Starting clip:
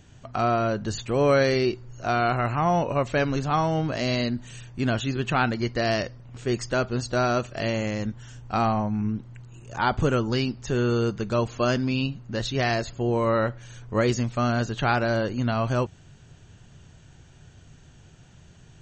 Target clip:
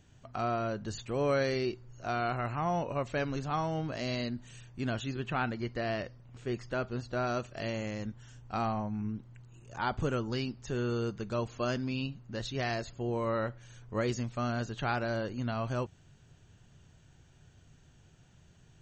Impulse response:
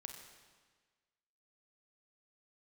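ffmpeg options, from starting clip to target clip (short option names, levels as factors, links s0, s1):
-filter_complex "[0:a]asettb=1/sr,asplit=3[s0][s1][s2];[s0]atrim=end=5.194[s3];[s1]atrim=start=5.19:end=7.27,asetpts=PTS-STARTPTS,afade=t=in:d=0.004:c=qsin,afade=t=out:st=2.076:d=0.004:c=qsin,acrossover=split=3800[s4][s5];[s5]acompressor=threshold=0.00282:ratio=4:attack=1:release=60[s6];[s4][s6]amix=inputs=2:normalize=0[s7];[s2]atrim=start=7.266[s8];[s3][s7]acrossfade=d=0.004:c1=hsin:c2=qsin[s9];[s9][s8]acrossfade=d=0.004:c1=qsin:c2=hsin,volume=0.355"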